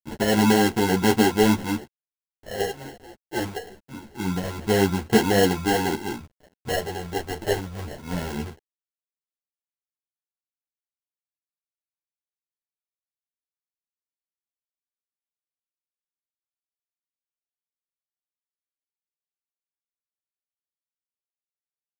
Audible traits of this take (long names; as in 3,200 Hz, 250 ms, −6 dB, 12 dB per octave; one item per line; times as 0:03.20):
a quantiser's noise floor 8 bits, dither none
phaser sweep stages 2, 0.24 Hz, lowest notch 210–1,700 Hz
aliases and images of a low sample rate 1,200 Hz, jitter 0%
a shimmering, thickened sound